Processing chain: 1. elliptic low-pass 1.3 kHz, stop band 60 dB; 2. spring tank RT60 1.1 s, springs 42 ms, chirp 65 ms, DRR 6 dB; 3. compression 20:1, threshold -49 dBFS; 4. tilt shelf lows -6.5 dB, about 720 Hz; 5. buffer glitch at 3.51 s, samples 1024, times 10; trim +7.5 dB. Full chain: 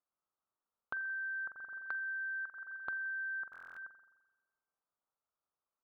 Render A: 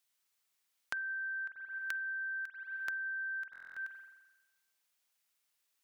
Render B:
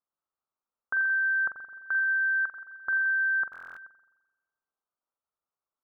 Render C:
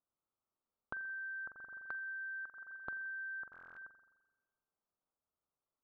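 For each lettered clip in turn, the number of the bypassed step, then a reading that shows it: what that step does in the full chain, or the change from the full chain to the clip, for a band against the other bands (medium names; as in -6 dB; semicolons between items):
1, crest factor change +6.0 dB; 3, mean gain reduction 8.5 dB; 4, crest factor change +3.0 dB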